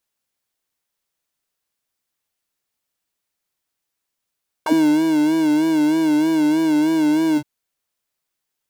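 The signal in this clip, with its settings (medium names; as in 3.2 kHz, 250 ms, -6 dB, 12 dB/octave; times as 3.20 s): synth patch with vibrato D#4, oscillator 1 square, oscillator 2 sine, interval +12 st, oscillator 2 level -10.5 dB, sub -9 dB, noise -29.5 dB, filter highpass, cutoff 110 Hz, Q 4.2, filter envelope 3.5 oct, filter decay 0.06 s, filter sustain 35%, attack 5.7 ms, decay 0.36 s, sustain -3 dB, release 0.06 s, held 2.71 s, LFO 3.2 Hz, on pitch 74 cents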